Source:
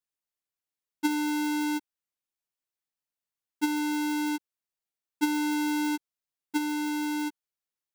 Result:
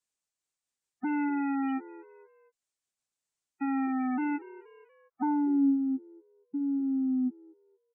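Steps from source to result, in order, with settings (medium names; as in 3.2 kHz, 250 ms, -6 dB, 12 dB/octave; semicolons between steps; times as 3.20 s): sawtooth pitch modulation -3 st, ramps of 1045 ms; frequency-shifting echo 237 ms, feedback 40%, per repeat +71 Hz, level -20 dB; peak limiter -28.5 dBFS, peak gain reduction 8.5 dB; spectral gate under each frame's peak -20 dB strong; low-pass sweep 7.9 kHz -> 210 Hz, 4.47–5.78 s; trim +1.5 dB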